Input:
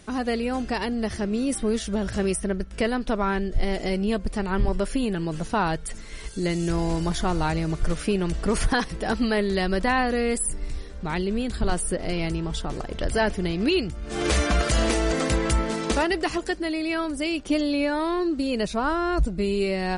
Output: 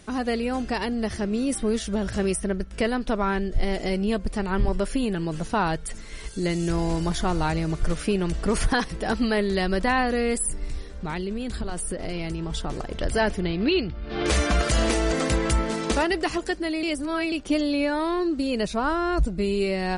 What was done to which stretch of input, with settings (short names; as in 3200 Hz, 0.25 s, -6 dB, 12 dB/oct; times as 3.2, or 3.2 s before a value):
10.89–12.52 compressor, threshold -25 dBFS
13.4–14.26 steep low-pass 4700 Hz 48 dB/oct
16.83–17.32 reverse